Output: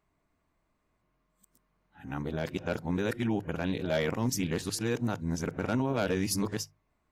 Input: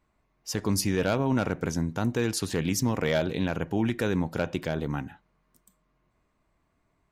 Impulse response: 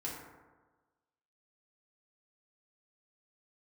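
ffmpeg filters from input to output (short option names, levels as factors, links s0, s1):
-filter_complex "[0:a]areverse,bandreject=f=50:t=h:w=6,bandreject=f=100:t=h:w=6,bandreject=f=150:t=h:w=6,asplit=2[s0][s1];[1:a]atrim=start_sample=2205,atrim=end_sample=3087[s2];[s1][s2]afir=irnorm=-1:irlink=0,volume=0.106[s3];[s0][s3]amix=inputs=2:normalize=0,volume=0.631"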